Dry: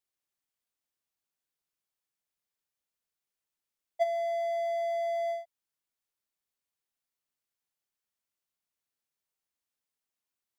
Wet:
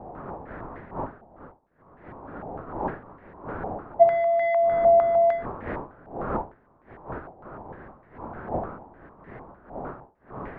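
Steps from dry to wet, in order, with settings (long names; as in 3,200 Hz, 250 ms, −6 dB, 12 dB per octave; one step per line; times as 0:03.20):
wind on the microphone 550 Hz −46 dBFS
low-pass on a step sequencer 6.6 Hz 780–1,900 Hz
level +6 dB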